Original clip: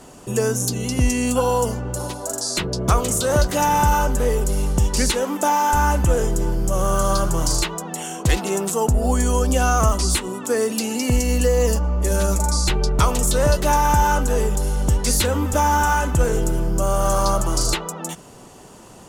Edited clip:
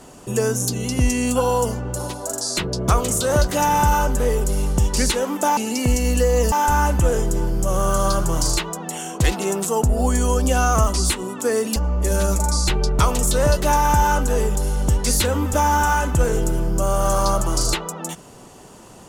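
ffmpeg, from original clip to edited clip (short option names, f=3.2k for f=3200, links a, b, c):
-filter_complex "[0:a]asplit=4[a][b][c][d];[a]atrim=end=5.572[e];[b]atrim=start=10.808:end=11.762[f];[c]atrim=start=5.568:end=10.812[g];[d]atrim=start=11.758[h];[e][f]acrossfade=d=0.004:c1=hsin:c2=hsin[i];[i][g]acrossfade=d=0.004:c1=hsin:c2=hsin[j];[j][h]acrossfade=d=0.004:c1=hsin:c2=hsin"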